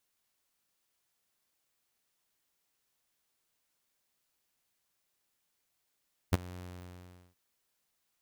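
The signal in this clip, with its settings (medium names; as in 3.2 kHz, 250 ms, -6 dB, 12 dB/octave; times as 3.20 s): ADSR saw 89.8 Hz, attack 19 ms, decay 23 ms, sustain -22.5 dB, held 0.27 s, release 758 ms -17.5 dBFS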